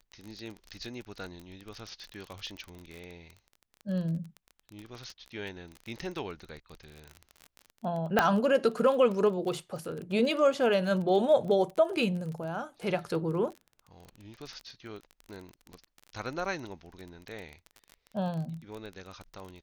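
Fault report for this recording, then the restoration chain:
crackle 26/s -35 dBFS
8.19 pop -9 dBFS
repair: de-click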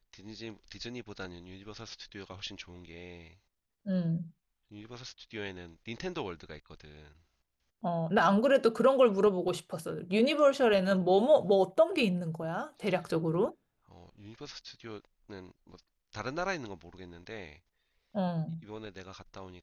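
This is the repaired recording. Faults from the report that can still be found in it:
8.19 pop

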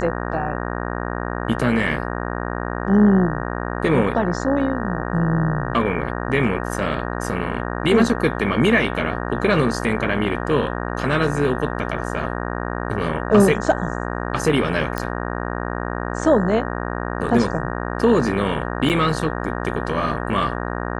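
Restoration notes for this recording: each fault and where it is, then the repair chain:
buzz 60 Hz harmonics 31 -26 dBFS
14.98 pop -9 dBFS
18.89–18.9 gap 8.8 ms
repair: de-click; de-hum 60 Hz, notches 31; interpolate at 18.89, 8.8 ms

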